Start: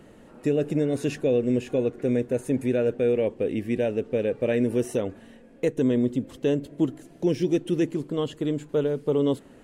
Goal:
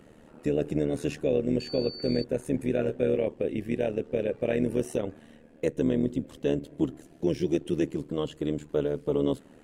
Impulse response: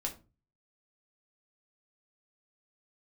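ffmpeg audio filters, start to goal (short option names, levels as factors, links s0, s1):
-filter_complex "[0:a]tremolo=f=76:d=0.75,asettb=1/sr,asplit=3[s0][s1][s2];[s0]atrim=end=1.604[s3];[s1]atrim=start=1.6:end=2.24,asetpts=PTS-STARTPTS,afade=t=in:d=0.004:c=qsin,afade=t=out:st=0.636:d=0.004:c=qsin,aeval=exprs='val(0)+0.0112*sin(2*PI*4500*n/s)':c=same[s4];[s2]atrim=start=2.236[s5];[s3][s4]acrossfade=d=0.004:c1=hsin:c2=qsin[s6];[s6][s5]acrossfade=d=0.004:c1=qsin:c2=hsin,asettb=1/sr,asplit=3[s7][s8][s9];[s7]atrim=end=2.774[s10];[s8]atrim=start=2.77:end=3.17,asetpts=PTS-STARTPTS,afade=t=in:d=0.004:c=qsin,afade=t=out:st=0.396:d=0.004:c=qsin,asplit=2[s11][s12];[s12]adelay=16,volume=0.473[s13];[s11][s13]amix=inputs=2:normalize=0,atrim=end_sample=17640[s14];[s9]atrim=start=3.166[s15];[s10][s14]acrossfade=d=0.004:c1=hsin:c2=qsin[s16];[s16][s15]acrossfade=d=0.004:c1=qsin:c2=hsin"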